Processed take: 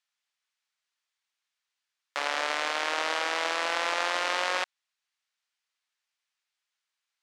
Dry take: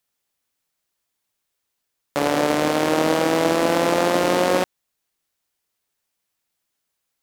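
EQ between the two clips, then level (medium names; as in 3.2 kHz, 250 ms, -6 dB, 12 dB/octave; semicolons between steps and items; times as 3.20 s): high-pass 1.3 kHz 12 dB/octave; distance through air 94 m; 0.0 dB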